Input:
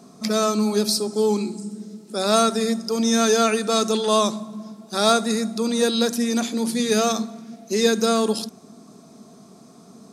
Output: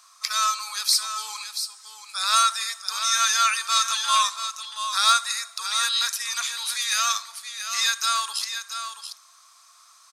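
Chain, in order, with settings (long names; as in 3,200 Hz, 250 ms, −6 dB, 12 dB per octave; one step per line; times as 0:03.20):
elliptic high-pass filter 1,100 Hz, stop band 80 dB
single-tap delay 681 ms −9 dB
level +3.5 dB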